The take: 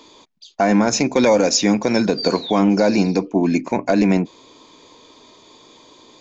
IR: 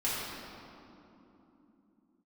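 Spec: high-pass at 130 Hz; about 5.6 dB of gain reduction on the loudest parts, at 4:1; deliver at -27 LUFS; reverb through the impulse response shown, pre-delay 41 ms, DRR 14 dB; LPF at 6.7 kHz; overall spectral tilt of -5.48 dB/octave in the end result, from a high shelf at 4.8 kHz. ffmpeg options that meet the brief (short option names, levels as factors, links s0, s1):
-filter_complex "[0:a]highpass=130,lowpass=6700,highshelf=f=4800:g=-9,acompressor=threshold=0.126:ratio=4,asplit=2[s0][s1];[1:a]atrim=start_sample=2205,adelay=41[s2];[s1][s2]afir=irnorm=-1:irlink=0,volume=0.075[s3];[s0][s3]amix=inputs=2:normalize=0,volume=0.631"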